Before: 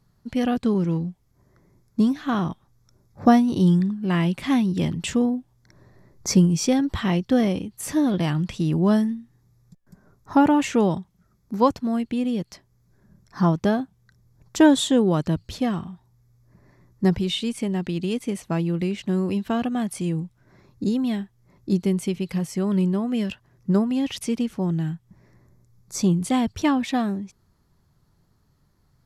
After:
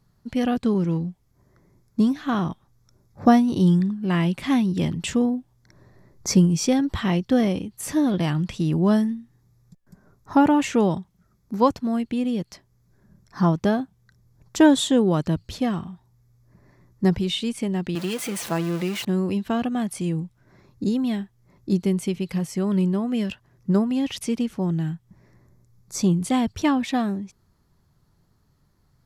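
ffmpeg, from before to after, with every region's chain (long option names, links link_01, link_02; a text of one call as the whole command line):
ffmpeg -i in.wav -filter_complex "[0:a]asettb=1/sr,asplit=3[link_01][link_02][link_03];[link_01]atrim=end=17.954[link_04];[link_02]atrim=start=17.95:end=19.05,asetpts=PTS-STARTPTS,afade=type=in:duration=0.004:curve=qsin,afade=type=out:start_time=1.096:duration=0.004:curve=qsin,aeval=exprs='val(0)+0.5*0.0398*sgn(val(0))':channel_layout=same,highpass=frequency=380:poles=1,aecho=1:1:5.9:0.4,atrim=end_sample=48510[link_05];[link_03]atrim=start=19.046[link_06];[link_04][link_05]acrossfade=duration=0.004:curve1=hsin:curve2=qsin[link_07];[link_07][link_06]acrossfade=duration=0.004:curve1=qsin:curve2=hsin" out.wav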